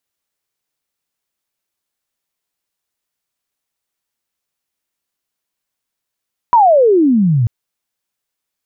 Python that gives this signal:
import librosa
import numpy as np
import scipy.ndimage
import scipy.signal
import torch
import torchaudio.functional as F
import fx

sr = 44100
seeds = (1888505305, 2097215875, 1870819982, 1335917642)

y = fx.chirp(sr, length_s=0.94, from_hz=1000.0, to_hz=110.0, law='logarithmic', from_db=-5.0, to_db=-10.0)